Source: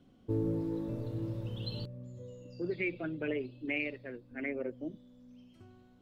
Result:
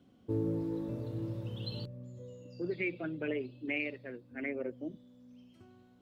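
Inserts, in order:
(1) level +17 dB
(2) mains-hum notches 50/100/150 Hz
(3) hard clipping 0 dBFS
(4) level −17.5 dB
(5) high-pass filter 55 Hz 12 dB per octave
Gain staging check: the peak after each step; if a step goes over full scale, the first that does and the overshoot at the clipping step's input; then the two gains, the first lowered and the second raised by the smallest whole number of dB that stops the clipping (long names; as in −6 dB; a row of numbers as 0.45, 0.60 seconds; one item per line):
−5.0, −5.0, −5.0, −22.5, −22.0 dBFS
no step passes full scale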